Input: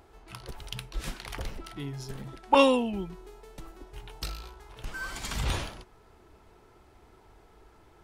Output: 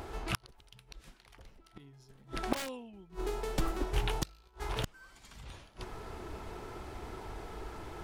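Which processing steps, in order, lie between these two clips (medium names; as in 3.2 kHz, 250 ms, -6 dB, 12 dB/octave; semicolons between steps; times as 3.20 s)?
integer overflow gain 13.5 dB; inverted gate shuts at -32 dBFS, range -32 dB; loudspeaker Doppler distortion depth 0.39 ms; trim +13 dB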